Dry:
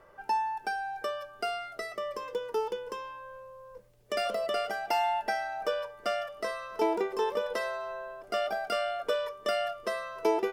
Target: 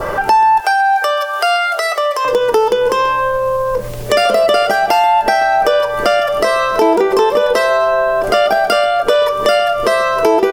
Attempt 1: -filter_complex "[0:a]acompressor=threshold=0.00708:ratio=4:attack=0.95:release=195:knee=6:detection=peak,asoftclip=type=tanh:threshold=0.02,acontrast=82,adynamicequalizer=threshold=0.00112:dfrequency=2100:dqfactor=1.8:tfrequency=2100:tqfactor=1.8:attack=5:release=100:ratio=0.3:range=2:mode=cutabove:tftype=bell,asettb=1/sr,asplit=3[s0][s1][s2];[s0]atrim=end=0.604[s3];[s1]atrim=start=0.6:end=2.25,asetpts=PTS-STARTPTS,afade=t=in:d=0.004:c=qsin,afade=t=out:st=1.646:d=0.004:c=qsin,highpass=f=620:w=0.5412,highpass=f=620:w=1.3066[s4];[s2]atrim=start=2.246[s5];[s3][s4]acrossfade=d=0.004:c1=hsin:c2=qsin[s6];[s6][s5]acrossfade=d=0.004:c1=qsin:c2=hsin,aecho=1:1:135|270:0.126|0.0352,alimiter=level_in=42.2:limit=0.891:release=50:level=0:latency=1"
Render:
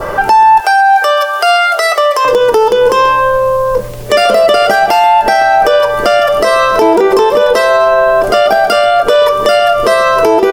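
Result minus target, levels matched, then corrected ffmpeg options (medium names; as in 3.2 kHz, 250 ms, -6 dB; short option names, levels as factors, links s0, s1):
compression: peak gain reduction -6.5 dB
-filter_complex "[0:a]acompressor=threshold=0.00266:ratio=4:attack=0.95:release=195:knee=6:detection=peak,asoftclip=type=tanh:threshold=0.02,acontrast=82,adynamicequalizer=threshold=0.00112:dfrequency=2100:dqfactor=1.8:tfrequency=2100:tqfactor=1.8:attack=5:release=100:ratio=0.3:range=2:mode=cutabove:tftype=bell,asettb=1/sr,asplit=3[s0][s1][s2];[s0]atrim=end=0.604[s3];[s1]atrim=start=0.6:end=2.25,asetpts=PTS-STARTPTS,afade=t=in:d=0.004:c=qsin,afade=t=out:st=1.646:d=0.004:c=qsin,highpass=f=620:w=0.5412,highpass=f=620:w=1.3066[s4];[s2]atrim=start=2.246[s5];[s3][s4]acrossfade=d=0.004:c1=hsin:c2=qsin[s6];[s6][s5]acrossfade=d=0.004:c1=qsin:c2=hsin,aecho=1:1:135|270:0.126|0.0352,alimiter=level_in=42.2:limit=0.891:release=50:level=0:latency=1"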